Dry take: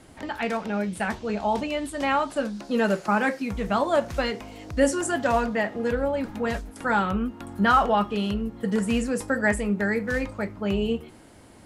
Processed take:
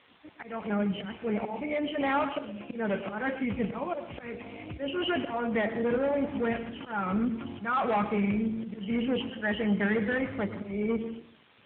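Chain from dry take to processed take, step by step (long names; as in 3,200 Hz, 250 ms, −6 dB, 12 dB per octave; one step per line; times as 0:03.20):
hearing-aid frequency compression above 2,100 Hz 4 to 1
volume swells 309 ms
noise gate −46 dBFS, range −23 dB
hard clipping −23 dBFS, distortion −12 dB
on a send at −10 dB: convolution reverb RT60 0.55 s, pre-delay 102 ms
on the sum: background noise white −50 dBFS
AMR narrowband 7.4 kbit/s 8,000 Hz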